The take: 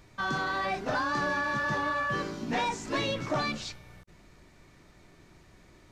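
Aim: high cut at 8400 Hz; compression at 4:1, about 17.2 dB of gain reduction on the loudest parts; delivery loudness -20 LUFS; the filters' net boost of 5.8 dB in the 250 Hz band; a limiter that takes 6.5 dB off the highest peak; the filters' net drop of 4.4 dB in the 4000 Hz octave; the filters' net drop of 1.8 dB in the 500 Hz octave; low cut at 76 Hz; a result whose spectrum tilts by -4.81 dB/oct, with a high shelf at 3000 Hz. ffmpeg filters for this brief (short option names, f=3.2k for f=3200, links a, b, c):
-af "highpass=76,lowpass=8.4k,equalizer=f=250:t=o:g=8.5,equalizer=f=500:t=o:g=-4.5,highshelf=f=3k:g=4.5,equalizer=f=4k:t=o:g=-8.5,acompressor=threshold=-46dB:ratio=4,volume=29.5dB,alimiter=limit=-10.5dB:level=0:latency=1"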